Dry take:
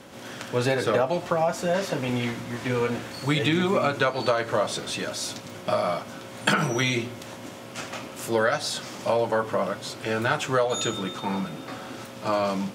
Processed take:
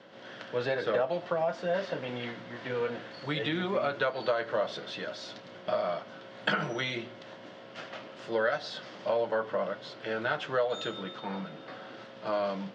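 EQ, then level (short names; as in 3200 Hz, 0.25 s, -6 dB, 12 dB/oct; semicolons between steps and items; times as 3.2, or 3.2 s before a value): speaker cabinet 220–4000 Hz, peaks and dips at 260 Hz -9 dB, 380 Hz -5 dB, 850 Hz -6 dB, 1200 Hz -5 dB, 2400 Hz -8 dB, 3800 Hz -3 dB; -3.0 dB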